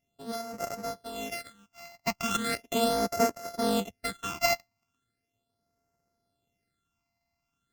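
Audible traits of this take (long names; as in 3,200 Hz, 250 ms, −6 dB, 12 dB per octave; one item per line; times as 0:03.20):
a buzz of ramps at a fixed pitch in blocks of 64 samples
phaser sweep stages 8, 0.38 Hz, lowest notch 440–3,400 Hz
AAC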